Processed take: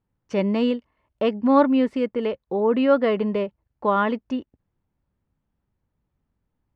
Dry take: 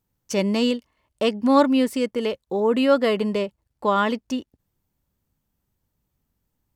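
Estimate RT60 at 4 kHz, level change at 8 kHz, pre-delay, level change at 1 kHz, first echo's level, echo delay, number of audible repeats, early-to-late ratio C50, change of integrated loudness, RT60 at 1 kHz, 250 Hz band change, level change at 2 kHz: no reverb, no reading, no reverb, 0.0 dB, no echo, no echo, no echo, no reverb, 0.0 dB, no reverb, 0.0 dB, -2.0 dB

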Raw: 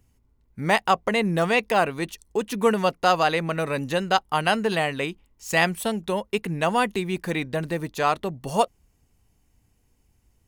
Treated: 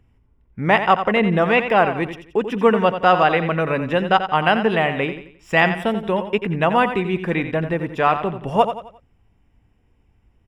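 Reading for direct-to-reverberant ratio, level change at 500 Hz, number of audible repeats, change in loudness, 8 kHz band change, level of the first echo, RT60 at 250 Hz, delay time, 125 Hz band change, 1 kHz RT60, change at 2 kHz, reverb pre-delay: no reverb, +5.5 dB, 3, +5.0 dB, under -10 dB, -10.0 dB, no reverb, 88 ms, +5.5 dB, no reverb, +5.0 dB, no reverb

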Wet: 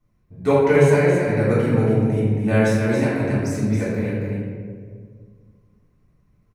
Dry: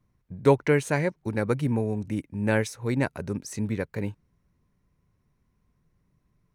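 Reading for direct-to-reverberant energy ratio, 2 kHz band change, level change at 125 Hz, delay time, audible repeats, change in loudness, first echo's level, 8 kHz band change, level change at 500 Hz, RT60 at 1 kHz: -10.0 dB, +6.0 dB, +9.0 dB, 274 ms, 1, +7.5 dB, -5.0 dB, +3.0 dB, +8.5 dB, 1.5 s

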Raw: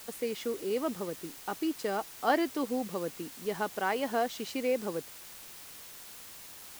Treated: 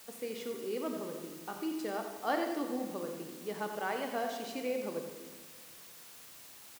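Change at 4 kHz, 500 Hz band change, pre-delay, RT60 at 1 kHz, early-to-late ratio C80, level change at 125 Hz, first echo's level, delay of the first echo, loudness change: -4.5 dB, -4.5 dB, 21 ms, 1.4 s, 5.5 dB, -4.5 dB, -10.0 dB, 89 ms, -4.5 dB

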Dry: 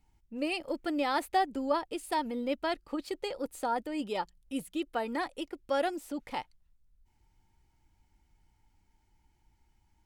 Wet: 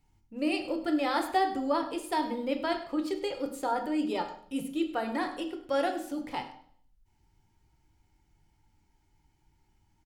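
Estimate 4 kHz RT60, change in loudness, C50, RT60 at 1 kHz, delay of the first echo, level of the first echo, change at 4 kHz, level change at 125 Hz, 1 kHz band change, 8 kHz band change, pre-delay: 0.55 s, +2.5 dB, 9.0 dB, 0.55 s, 102 ms, -15.5 dB, +1.0 dB, +3.0 dB, +1.5 dB, +0.5 dB, 3 ms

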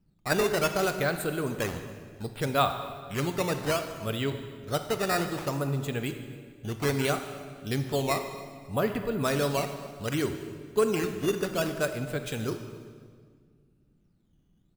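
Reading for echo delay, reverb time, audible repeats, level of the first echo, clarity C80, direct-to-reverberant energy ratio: 270 ms, 1.8 s, 1, -22.5 dB, 9.5 dB, 7.0 dB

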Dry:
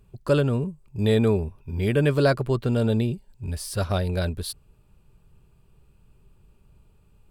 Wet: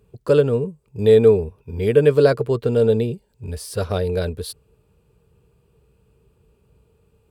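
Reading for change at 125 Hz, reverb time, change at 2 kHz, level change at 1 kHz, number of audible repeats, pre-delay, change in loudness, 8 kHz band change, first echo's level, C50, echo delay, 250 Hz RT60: 0.0 dB, no reverb, 0.0 dB, +0.5 dB, no echo, no reverb, +6.0 dB, 0.0 dB, no echo, no reverb, no echo, no reverb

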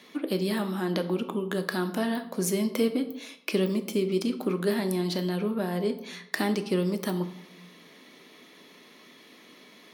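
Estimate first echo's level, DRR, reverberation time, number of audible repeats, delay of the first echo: no echo, 8.0 dB, 0.85 s, no echo, no echo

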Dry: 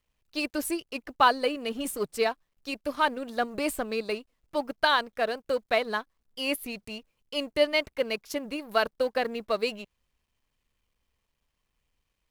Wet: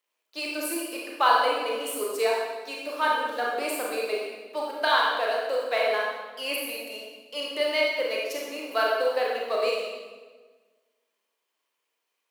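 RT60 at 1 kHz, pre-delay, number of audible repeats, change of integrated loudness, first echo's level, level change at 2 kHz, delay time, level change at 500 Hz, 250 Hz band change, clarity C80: 1.3 s, 28 ms, no echo, +2.0 dB, no echo, +2.5 dB, no echo, +2.5 dB, -5.0 dB, 2.0 dB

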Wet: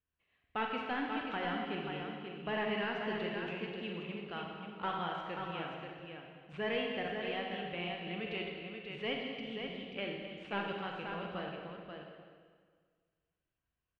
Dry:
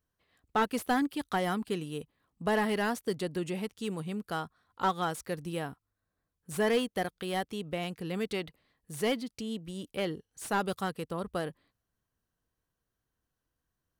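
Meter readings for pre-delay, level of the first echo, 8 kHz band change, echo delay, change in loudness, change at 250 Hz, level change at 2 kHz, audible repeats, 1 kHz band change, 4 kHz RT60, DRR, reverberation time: 35 ms, -10.0 dB, under -30 dB, 40 ms, -5.5 dB, -7.0 dB, -2.0 dB, 3, -5.5 dB, 1.6 s, -1.5 dB, 1.7 s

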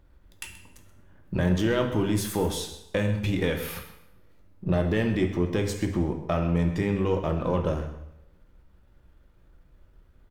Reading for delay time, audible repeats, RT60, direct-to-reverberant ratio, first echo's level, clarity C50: 129 ms, 1, 0.85 s, 3.5 dB, -15.0 dB, 7.5 dB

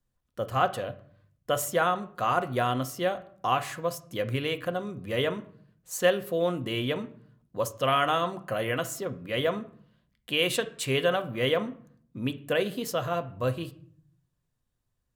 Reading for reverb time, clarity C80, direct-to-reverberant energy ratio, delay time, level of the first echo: 0.55 s, 21.0 dB, 8.5 dB, no echo, no echo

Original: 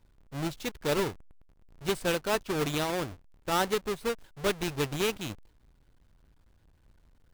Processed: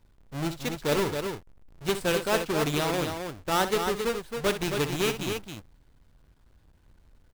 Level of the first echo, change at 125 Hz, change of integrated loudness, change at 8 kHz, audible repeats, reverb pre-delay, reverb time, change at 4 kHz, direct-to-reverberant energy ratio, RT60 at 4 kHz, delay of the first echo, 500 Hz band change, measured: -11.0 dB, +3.5 dB, +3.0 dB, +3.0 dB, 2, no reverb, no reverb, +3.0 dB, no reverb, no reverb, 61 ms, +3.0 dB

